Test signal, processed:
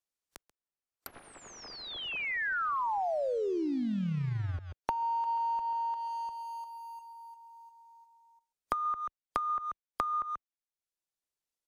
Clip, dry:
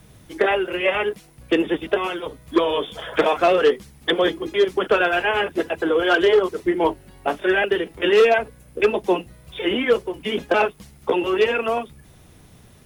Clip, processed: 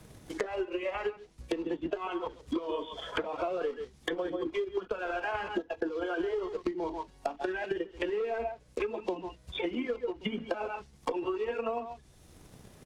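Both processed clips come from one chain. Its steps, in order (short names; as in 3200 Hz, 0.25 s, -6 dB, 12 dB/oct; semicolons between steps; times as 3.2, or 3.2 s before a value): block floating point 3-bit; tone controls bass -12 dB, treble +14 dB; echo 0.136 s -12 dB; spectral noise reduction 11 dB; limiter -12.5 dBFS; RIAA curve playback; transient shaper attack +8 dB, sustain -2 dB; compressor 12:1, threshold -25 dBFS; treble ducked by the level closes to 2000 Hz, closed at -27 dBFS; three-band squash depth 40%; gain -3.5 dB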